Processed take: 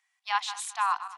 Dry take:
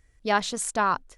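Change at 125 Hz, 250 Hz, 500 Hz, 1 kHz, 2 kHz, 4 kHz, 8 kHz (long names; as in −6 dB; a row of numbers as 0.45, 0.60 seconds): below −40 dB, below −40 dB, −27.0 dB, −2.5 dB, −5.0 dB, −1.5 dB, −6.0 dB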